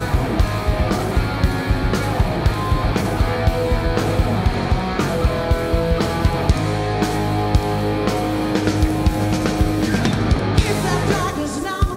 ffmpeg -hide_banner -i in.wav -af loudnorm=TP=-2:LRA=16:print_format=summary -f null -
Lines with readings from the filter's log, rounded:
Input Integrated:    -19.5 LUFS
Input True Peak:      -2.0 dBTP
Input LRA:             0.6 LU
Input Threshold:     -29.5 LUFS